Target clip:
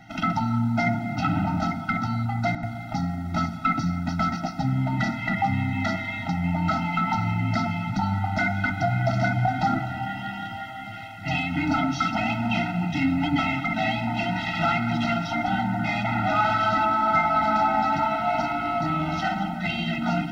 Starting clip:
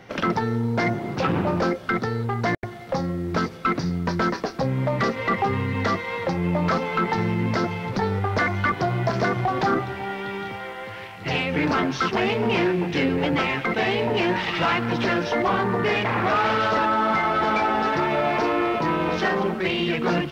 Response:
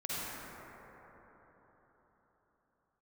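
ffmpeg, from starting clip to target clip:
-filter_complex "[0:a]bandreject=frequency=73.57:width_type=h:width=4,bandreject=frequency=147.14:width_type=h:width=4,bandreject=frequency=220.71:width_type=h:width=4,bandreject=frequency=294.28:width_type=h:width=4,bandreject=frequency=367.85:width_type=h:width=4,bandreject=frequency=441.42:width_type=h:width=4,bandreject=frequency=514.99:width_type=h:width=4,bandreject=frequency=588.56:width_type=h:width=4,bandreject=frequency=662.13:width_type=h:width=4,bandreject=frequency=735.7:width_type=h:width=4,bandreject=frequency=809.27:width_type=h:width=4,bandreject=frequency=882.84:width_type=h:width=4,bandreject=frequency=956.41:width_type=h:width=4,bandreject=frequency=1029.98:width_type=h:width=4,bandreject=frequency=1103.55:width_type=h:width=4,bandreject=frequency=1177.12:width_type=h:width=4,bandreject=frequency=1250.69:width_type=h:width=4,bandreject=frequency=1324.26:width_type=h:width=4,bandreject=frequency=1397.83:width_type=h:width=4,bandreject=frequency=1471.4:width_type=h:width=4,bandreject=frequency=1544.97:width_type=h:width=4,bandreject=frequency=1618.54:width_type=h:width=4,bandreject=frequency=1692.11:width_type=h:width=4,bandreject=frequency=1765.68:width_type=h:width=4,bandreject=frequency=1839.25:width_type=h:width=4,bandreject=frequency=1912.82:width_type=h:width=4,bandreject=frequency=1986.39:width_type=h:width=4,bandreject=frequency=2059.96:width_type=h:width=4,bandreject=frequency=2133.53:width_type=h:width=4,bandreject=frequency=2207.1:width_type=h:width=4,bandreject=frequency=2280.67:width_type=h:width=4,bandreject=frequency=2354.24:width_type=h:width=4,bandreject=frequency=2427.81:width_type=h:width=4,bandreject=frequency=2501.38:width_type=h:width=4,asplit=2[link_01][link_02];[1:a]atrim=start_sample=2205[link_03];[link_02][link_03]afir=irnorm=-1:irlink=0,volume=-15dB[link_04];[link_01][link_04]amix=inputs=2:normalize=0,afftfilt=real='re*eq(mod(floor(b*sr/1024/310),2),0)':imag='im*eq(mod(floor(b*sr/1024/310),2),0)':win_size=1024:overlap=0.75"

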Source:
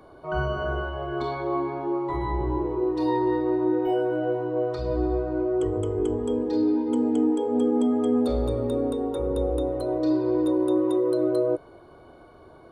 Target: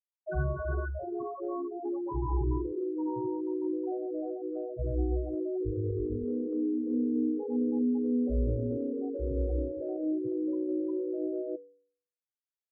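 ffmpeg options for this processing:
ffmpeg -i in.wav -filter_complex "[0:a]afftfilt=real='re*gte(hypot(re,im),0.141)':imag='im*gte(hypot(re,im),0.141)':win_size=1024:overlap=0.75,acrossover=split=230|3000[link_01][link_02][link_03];[link_02]acompressor=threshold=-34dB:ratio=10[link_04];[link_01][link_04][link_03]amix=inputs=3:normalize=0,bandreject=frequency=97.77:width_type=h:width=4,bandreject=frequency=195.54:width_type=h:width=4,bandreject=frequency=293.31:width_type=h:width=4,bandreject=frequency=391.08:width_type=h:width=4,bandreject=frequency=488.85:width_type=h:width=4,bandreject=frequency=586.62:width_type=h:width=4,bandreject=frequency=684.39:width_type=h:width=4,bandreject=frequency=782.16:width_type=h:width=4,bandreject=frequency=879.93:width_type=h:width=4,bandreject=frequency=977.7:width_type=h:width=4,bandreject=frequency=1075.47:width_type=h:width=4,bandreject=frequency=1173.24:width_type=h:width=4,bandreject=frequency=1271.01:width_type=h:width=4,bandreject=frequency=1368.78:width_type=h:width=4,bandreject=frequency=1466.55:width_type=h:width=4,bandreject=frequency=1564.32:width_type=h:width=4,bandreject=frequency=1662.09:width_type=h:width=4,bandreject=frequency=1759.86:width_type=h:width=4,bandreject=frequency=1857.63:width_type=h:width=4,bandreject=frequency=1955.4:width_type=h:width=4,bandreject=frequency=2053.17:width_type=h:width=4,bandreject=frequency=2150.94:width_type=h:width=4" out.wav

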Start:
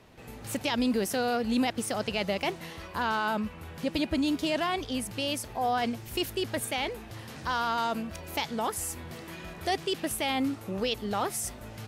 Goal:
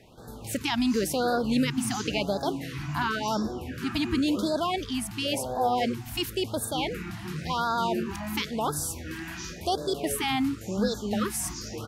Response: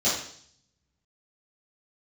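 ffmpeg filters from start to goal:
-filter_complex "[0:a]asplit=2[link_01][link_02];[link_02]asetrate=25442,aresample=44100[link_03];[1:a]atrim=start_sample=2205,adelay=60[link_04];[link_03][link_04]afir=irnorm=-1:irlink=0,volume=-22dB[link_05];[link_01][link_05]amix=inputs=2:normalize=0,afftfilt=real='re*(1-between(b*sr/1024,450*pow(2500/450,0.5+0.5*sin(2*PI*0.94*pts/sr))/1.41,450*pow(2500/450,0.5+0.5*sin(2*PI*0.94*pts/sr))*1.41))':imag='im*(1-between(b*sr/1024,450*pow(2500/450,0.5+0.5*sin(2*PI*0.94*pts/sr))/1.41,450*pow(2500/450,0.5+0.5*sin(2*PI*0.94*pts/sr))*1.41))':win_size=1024:overlap=0.75,volume=2dB"

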